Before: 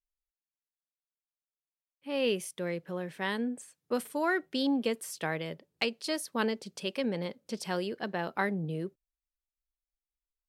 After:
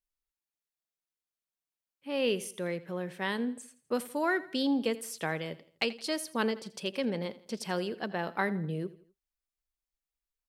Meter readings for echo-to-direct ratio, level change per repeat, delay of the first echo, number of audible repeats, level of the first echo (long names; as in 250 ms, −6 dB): −17.0 dB, −7.5 dB, 83 ms, 3, −18.0 dB